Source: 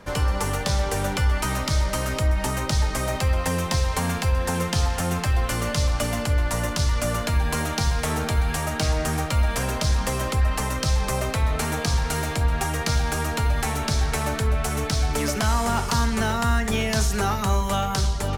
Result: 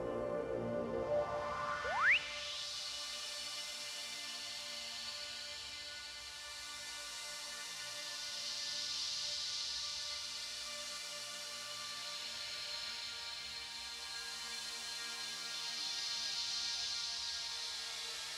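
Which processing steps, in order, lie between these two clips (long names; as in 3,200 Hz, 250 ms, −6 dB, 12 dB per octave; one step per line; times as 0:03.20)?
extreme stretch with random phases 7.3×, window 0.50 s, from 0:05.54
sound drawn into the spectrogram rise, 0:01.84–0:02.18, 440–3,100 Hz −23 dBFS
band-pass filter sweep 450 Hz → 4,200 Hz, 0:00.91–0:02.69
level −4 dB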